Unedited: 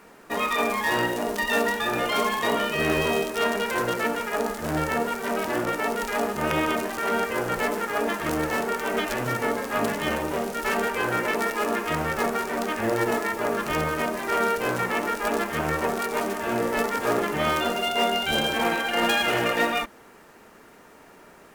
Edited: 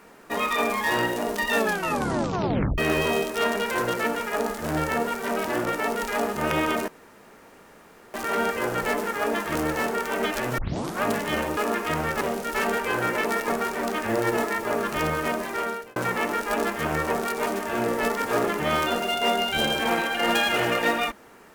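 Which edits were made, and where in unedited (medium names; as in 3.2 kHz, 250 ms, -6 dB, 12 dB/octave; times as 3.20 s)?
1.57 s: tape stop 1.21 s
6.88 s: insert room tone 1.26 s
9.32 s: tape start 0.45 s
11.58–12.22 s: move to 10.31 s
14.15–14.70 s: fade out linear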